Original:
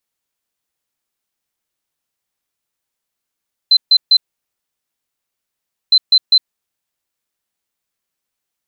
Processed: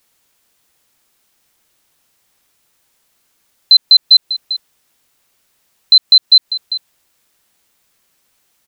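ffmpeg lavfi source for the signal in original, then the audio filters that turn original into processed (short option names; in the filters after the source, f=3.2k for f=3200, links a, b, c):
-f lavfi -i "aevalsrc='0.531*sin(2*PI*4070*t)*clip(min(mod(mod(t,2.21),0.2),0.06-mod(mod(t,2.21),0.2))/0.005,0,1)*lt(mod(t,2.21),0.6)':d=4.42:s=44100"
-af "acompressor=threshold=-15dB:ratio=6,aecho=1:1:396:0.0891,alimiter=level_in=18dB:limit=-1dB:release=50:level=0:latency=1"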